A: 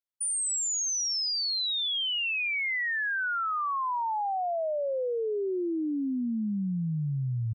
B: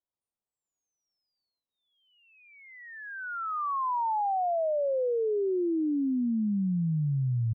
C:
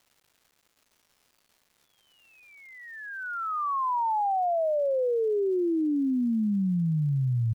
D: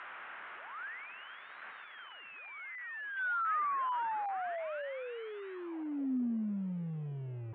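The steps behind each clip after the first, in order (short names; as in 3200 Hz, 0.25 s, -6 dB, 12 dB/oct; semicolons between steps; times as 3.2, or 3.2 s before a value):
inverse Chebyshev low-pass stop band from 3600 Hz, stop band 60 dB; in parallel at -2.5 dB: vocal rider within 5 dB; on the sum: gain -2.5 dB
crackle 420/s -54 dBFS; gain +2 dB
delta modulation 16 kbps, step -34 dBFS; band-pass sweep 1500 Hz -> 370 Hz, 5.51–6.15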